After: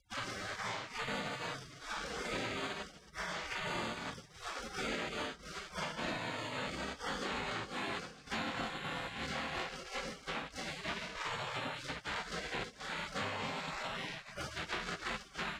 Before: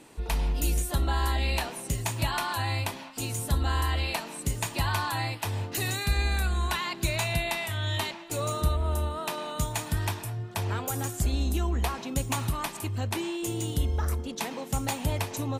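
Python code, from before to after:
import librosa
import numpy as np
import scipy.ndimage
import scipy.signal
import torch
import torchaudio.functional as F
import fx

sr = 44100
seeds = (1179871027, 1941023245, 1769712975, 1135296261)

p1 = fx.spec_blur(x, sr, span_ms=103.0)
p2 = fx.high_shelf(p1, sr, hz=4000.0, db=5.0)
p3 = fx.rider(p2, sr, range_db=10, speed_s=2.0)
p4 = p2 + F.gain(torch.from_numpy(p3), 3.0).numpy()
p5 = fx.transient(p4, sr, attack_db=5, sustain_db=-12)
p6 = fx.echo_feedback(p5, sr, ms=272, feedback_pct=37, wet_db=-16.0)
p7 = np.sign(p6) * np.maximum(np.abs(p6) - 10.0 ** (-37.0 / 20.0), 0.0)
p8 = np.repeat(scipy.signal.resample_poly(p7, 1, 4), 4)[:len(p7)]
p9 = fx.highpass(p8, sr, hz=700.0, slope=6)
p10 = p9 + fx.room_early_taps(p9, sr, ms=(53, 72), db=(-14.0, -14.5), dry=0)
p11 = fx.spec_gate(p10, sr, threshold_db=-20, keep='weak')
p12 = fx.spacing_loss(p11, sr, db_at_10k=32)
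p13 = fx.band_squash(p12, sr, depth_pct=100)
y = F.gain(torch.from_numpy(p13), 9.0).numpy()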